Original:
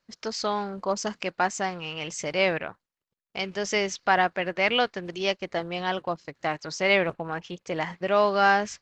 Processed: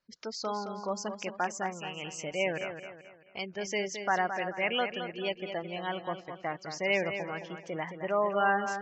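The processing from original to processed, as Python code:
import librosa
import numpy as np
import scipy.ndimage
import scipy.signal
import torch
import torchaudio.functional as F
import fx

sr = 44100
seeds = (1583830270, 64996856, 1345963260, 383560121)

y = fx.spec_gate(x, sr, threshold_db=-20, keep='strong')
y = fx.echo_feedback(y, sr, ms=217, feedback_pct=39, wet_db=-8.5)
y = F.gain(torch.from_numpy(y), -6.5).numpy()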